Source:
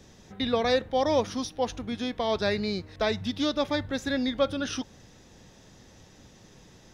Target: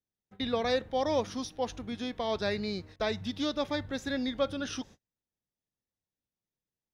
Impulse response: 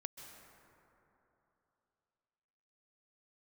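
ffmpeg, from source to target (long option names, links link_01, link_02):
-af "agate=range=-39dB:threshold=-44dB:ratio=16:detection=peak,volume=-4.5dB"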